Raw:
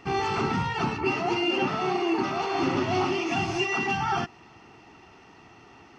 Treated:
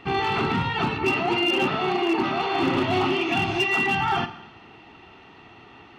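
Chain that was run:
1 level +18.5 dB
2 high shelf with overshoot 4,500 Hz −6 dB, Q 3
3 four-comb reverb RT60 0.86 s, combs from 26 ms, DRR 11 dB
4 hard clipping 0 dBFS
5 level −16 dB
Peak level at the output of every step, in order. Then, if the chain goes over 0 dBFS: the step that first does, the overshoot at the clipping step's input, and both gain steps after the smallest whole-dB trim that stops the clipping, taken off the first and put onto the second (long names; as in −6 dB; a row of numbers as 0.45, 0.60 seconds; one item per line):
+4.0, +5.0, +5.5, 0.0, −16.0 dBFS
step 1, 5.5 dB
step 1 +12.5 dB, step 5 −10 dB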